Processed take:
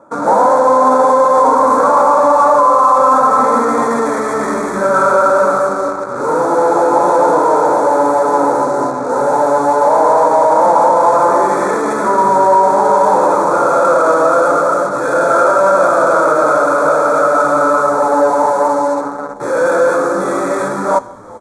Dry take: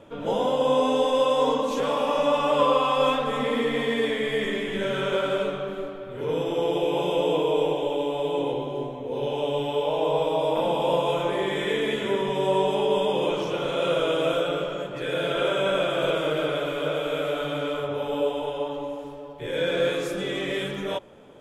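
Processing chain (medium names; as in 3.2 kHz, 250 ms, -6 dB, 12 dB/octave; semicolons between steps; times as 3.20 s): median filter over 9 samples; dynamic bell 870 Hz, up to +6 dB, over -36 dBFS, Q 0.74; in parallel at -9.5 dB: fuzz box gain 40 dB, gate -37 dBFS; on the sum: Butterworth band-stop 2.9 kHz, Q 0.91; cabinet simulation 250–9600 Hz, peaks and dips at 420 Hz -8 dB, 920 Hz +5 dB, 1.3 kHz +9 dB, 1.9 kHz -8 dB, 2.7 kHz +7 dB, 5 kHz -10 dB; frequency-shifting echo 389 ms, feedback 44%, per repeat -82 Hz, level -21 dB; on a send at -15.5 dB: reverberation RT60 1.0 s, pre-delay 3 ms; on the sum: loudness maximiser +7.5 dB; trim -1 dB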